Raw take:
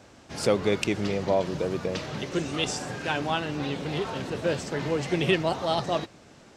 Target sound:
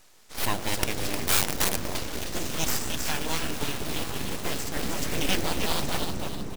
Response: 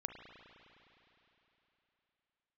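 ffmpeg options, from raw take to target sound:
-filter_complex "[0:a]asplit=2[link_01][link_02];[link_02]acrusher=bits=4:mix=0:aa=0.000001,volume=-8.5dB[link_03];[link_01][link_03]amix=inputs=2:normalize=0,bandreject=frequency=60:width_type=h:width=6,bandreject=frequency=120:width_type=h:width=6,bandreject=frequency=180:width_type=h:width=6,bandreject=frequency=240:width_type=h:width=6,bandreject=frequency=300:width_type=h:width=6,bandreject=frequency=360:width_type=h:width=6,bandreject=frequency=420:width_type=h:width=6,asplit=6[link_04][link_05][link_06][link_07][link_08][link_09];[link_05]adelay=308,afreqshift=-58,volume=-7dB[link_10];[link_06]adelay=616,afreqshift=-116,volume=-14.5dB[link_11];[link_07]adelay=924,afreqshift=-174,volume=-22.1dB[link_12];[link_08]adelay=1232,afreqshift=-232,volume=-29.6dB[link_13];[link_09]adelay=1540,afreqshift=-290,volume=-37.1dB[link_14];[link_04][link_10][link_11][link_12][link_13][link_14]amix=inputs=6:normalize=0,asettb=1/sr,asplit=3[link_15][link_16][link_17];[link_15]atrim=end=1.274[link_18];[link_16]atrim=start=1.27:end=1.76,asetpts=PTS-STARTPTS,afade=type=in:duration=0.004:curve=qsin,afade=type=out:start_time=0.486:duration=0.004:curve=qsin,aeval=exprs='(mod(7.5*val(0)+1,2)-1)/7.5':channel_layout=same[link_19];[link_17]atrim=start=1.756[link_20];[link_18][link_19]acrossfade=duration=0.004:curve1=hsin:curve2=qsin[link_21];[link_21][link_20]acrossfade=duration=0.004:curve1=qsin:curve2=hsin,asplit=2[link_22][link_23];[link_23]asubboost=boost=11.5:cutoff=170[link_24];[1:a]atrim=start_sample=2205,asetrate=23373,aresample=44100[link_25];[link_24][link_25]afir=irnorm=-1:irlink=0,volume=-5.5dB[link_26];[link_22][link_26]amix=inputs=2:normalize=0,crystalizer=i=3.5:c=0,aeval=exprs='abs(val(0))':channel_layout=same,volume=-9.5dB"

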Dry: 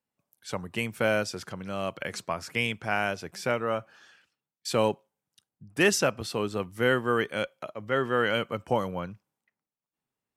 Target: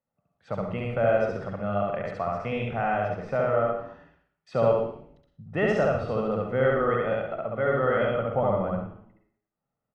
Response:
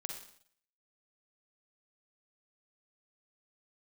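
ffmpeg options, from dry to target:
-filter_complex "[0:a]lowpass=1200,aecho=1:1:1.6:0.54,asplit=2[link_01][link_02];[link_02]alimiter=level_in=0.5dB:limit=-24dB:level=0:latency=1,volume=-0.5dB,volume=-1dB[link_03];[link_01][link_03]amix=inputs=2:normalize=0,asplit=6[link_04][link_05][link_06][link_07][link_08][link_09];[link_05]adelay=90,afreqshift=-100,volume=-19dB[link_10];[link_06]adelay=180,afreqshift=-200,volume=-24.2dB[link_11];[link_07]adelay=270,afreqshift=-300,volume=-29.4dB[link_12];[link_08]adelay=360,afreqshift=-400,volume=-34.6dB[link_13];[link_09]adelay=450,afreqshift=-500,volume=-39.8dB[link_14];[link_04][link_10][link_11][link_12][link_13][link_14]amix=inputs=6:normalize=0,asplit=2[link_15][link_16];[1:a]atrim=start_sample=2205,adelay=72[link_17];[link_16][link_17]afir=irnorm=-1:irlink=0,volume=2.5dB[link_18];[link_15][link_18]amix=inputs=2:normalize=0,asetrate=45938,aresample=44100,volume=-3.5dB"

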